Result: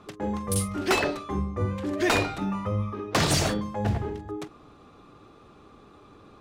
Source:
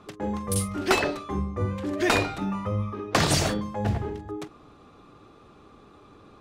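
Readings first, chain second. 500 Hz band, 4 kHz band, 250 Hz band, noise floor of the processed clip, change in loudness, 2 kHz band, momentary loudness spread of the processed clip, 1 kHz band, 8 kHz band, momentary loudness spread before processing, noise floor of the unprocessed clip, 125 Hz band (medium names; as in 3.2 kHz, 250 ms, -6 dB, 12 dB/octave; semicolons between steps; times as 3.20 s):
-0.5 dB, -0.5 dB, 0.0 dB, -53 dBFS, -0.5 dB, -1.0 dB, 10 LU, -1.0 dB, -0.5 dB, 10 LU, -53 dBFS, 0.0 dB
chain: overload inside the chain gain 16.5 dB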